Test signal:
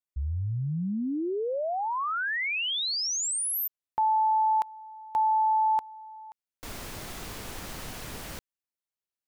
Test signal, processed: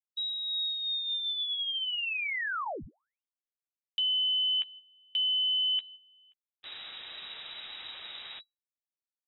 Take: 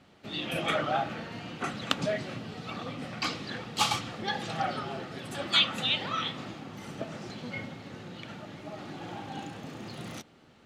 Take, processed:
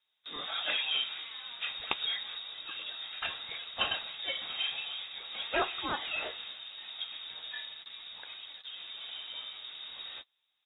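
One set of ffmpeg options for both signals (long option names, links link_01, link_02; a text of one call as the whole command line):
ffmpeg -i in.wav -filter_complex "[0:a]lowpass=frequency=3300:width_type=q:width=0.5098,lowpass=frequency=3300:width_type=q:width=0.6013,lowpass=frequency=3300:width_type=q:width=0.9,lowpass=frequency=3300:width_type=q:width=2.563,afreqshift=-3900,agate=range=-18dB:threshold=-43dB:ratio=16:release=127:detection=rms,bandreject=frequency=1000:width=20,asplit=2[link_01][link_02];[link_02]adelay=13,volume=-12dB[link_03];[link_01][link_03]amix=inputs=2:normalize=0,volume=-3.5dB" out.wav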